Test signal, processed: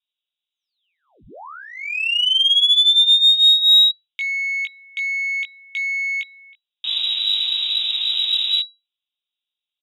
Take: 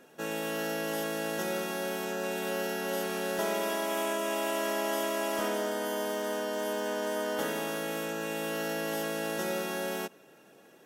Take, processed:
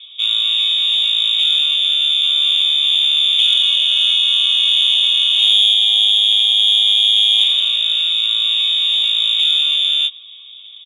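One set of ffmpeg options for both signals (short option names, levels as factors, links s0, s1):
-filter_complex "[0:a]lowpass=f=3300:t=q:w=0.5098,lowpass=f=3300:t=q:w=0.6013,lowpass=f=3300:t=q:w=0.9,lowpass=f=3300:t=q:w=2.563,afreqshift=-3900,asplit=2[s0][s1];[s1]adelay=19,volume=0.631[s2];[s0][s2]amix=inputs=2:normalize=0,aexciter=amount=10.9:drive=8.6:freq=2900,volume=0.708"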